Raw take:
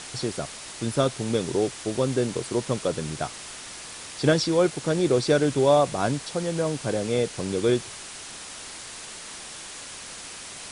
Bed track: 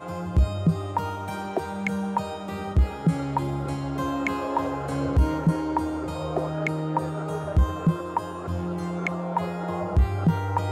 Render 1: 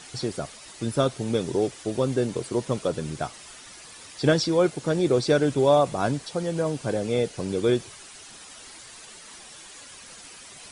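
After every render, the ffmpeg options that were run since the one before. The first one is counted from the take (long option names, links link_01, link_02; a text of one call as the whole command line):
ffmpeg -i in.wav -af "afftdn=noise_reduction=9:noise_floor=-40" out.wav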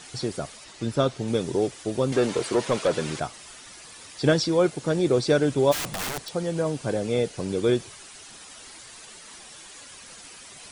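ffmpeg -i in.wav -filter_complex "[0:a]asettb=1/sr,asplit=3[link_01][link_02][link_03];[link_01]atrim=end=0.644[link_04];[link_02]atrim=start=0.64:end=1.28,asetpts=PTS-STARTPTS,afade=type=in:duration=0.004:curve=qsin,afade=type=out:start_time=0.636:duration=0.004:curve=qsin,lowpass=7000[link_05];[link_03]atrim=start=1.276[link_06];[link_04][link_05]acrossfade=duration=0.004:curve1=hsin:curve2=qsin[link_07];[link_07][link_06]acrossfade=duration=0.004:curve1=qsin:curve2=hsin,asettb=1/sr,asplit=3[link_08][link_09][link_10];[link_08]atrim=end=2.124[link_11];[link_09]atrim=start=2.12:end=3.2,asetpts=PTS-STARTPTS,afade=type=in:duration=0.004:curve=qsin,afade=type=out:start_time=1.076:duration=0.004:curve=qsin,asplit=2[link_12][link_13];[link_13]highpass=frequency=720:poles=1,volume=17dB,asoftclip=type=tanh:threshold=-12dB[link_14];[link_12][link_14]amix=inputs=2:normalize=0,lowpass=frequency=3700:poles=1,volume=-6dB[link_15];[link_10]atrim=start=3.196[link_16];[link_11][link_15]acrossfade=duration=0.004:curve1=hsin:curve2=qsin[link_17];[link_17][link_16]acrossfade=duration=0.004:curve1=qsin:curve2=hsin,asplit=3[link_18][link_19][link_20];[link_18]afade=type=out:start_time=5.71:duration=0.02[link_21];[link_19]aeval=exprs='(mod(17.8*val(0)+1,2)-1)/17.8':channel_layout=same,afade=type=in:start_time=5.71:duration=0.02,afade=type=out:start_time=6.33:duration=0.02[link_22];[link_20]afade=type=in:start_time=6.33:duration=0.02[link_23];[link_21][link_22][link_23]amix=inputs=3:normalize=0" out.wav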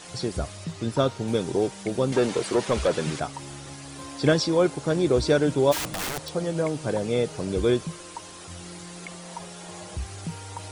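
ffmpeg -i in.wav -i bed.wav -filter_complex "[1:a]volume=-13dB[link_01];[0:a][link_01]amix=inputs=2:normalize=0" out.wav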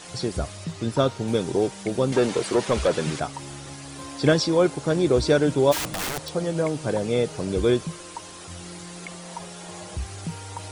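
ffmpeg -i in.wav -af "volume=1.5dB" out.wav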